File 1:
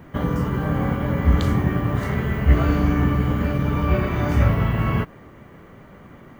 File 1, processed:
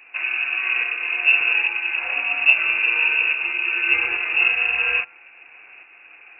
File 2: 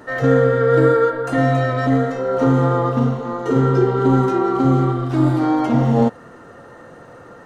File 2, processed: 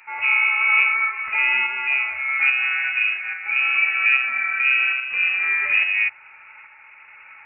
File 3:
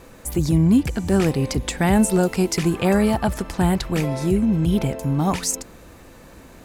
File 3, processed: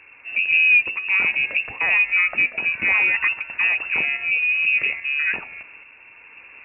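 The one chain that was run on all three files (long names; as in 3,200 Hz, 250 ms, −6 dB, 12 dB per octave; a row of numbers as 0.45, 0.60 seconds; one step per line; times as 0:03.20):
voice inversion scrambler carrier 2,700 Hz
low-shelf EQ 61 Hz −10 dB
hum removal 125.8 Hz, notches 11
shaped tremolo saw up 1.2 Hz, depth 40%
loudness normalisation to −18 LKFS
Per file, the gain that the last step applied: 0.0, −2.5, +0.5 decibels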